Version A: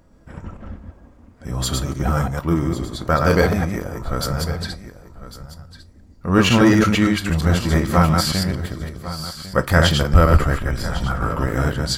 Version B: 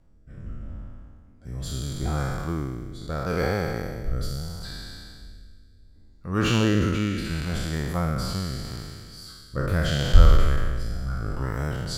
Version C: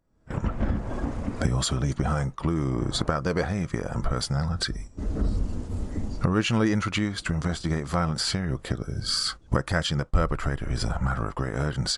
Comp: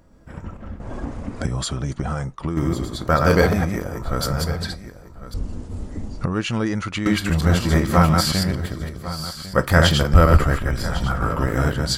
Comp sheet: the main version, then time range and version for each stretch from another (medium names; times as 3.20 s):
A
0.80–2.57 s: from C
5.34–7.06 s: from C
not used: B